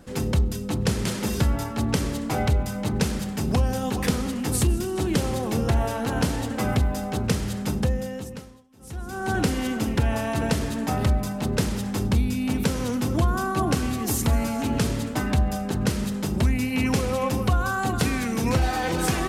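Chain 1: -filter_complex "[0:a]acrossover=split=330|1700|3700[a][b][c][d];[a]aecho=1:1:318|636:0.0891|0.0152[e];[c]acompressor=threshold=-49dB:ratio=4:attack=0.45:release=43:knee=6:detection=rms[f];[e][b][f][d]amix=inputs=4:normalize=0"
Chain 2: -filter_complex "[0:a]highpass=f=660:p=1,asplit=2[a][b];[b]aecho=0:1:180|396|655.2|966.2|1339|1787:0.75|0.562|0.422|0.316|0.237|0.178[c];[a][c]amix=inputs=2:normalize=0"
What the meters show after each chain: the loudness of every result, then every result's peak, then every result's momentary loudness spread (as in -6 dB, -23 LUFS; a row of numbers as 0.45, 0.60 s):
-25.5, -28.0 LUFS; -9.0, -10.5 dBFS; 4, 5 LU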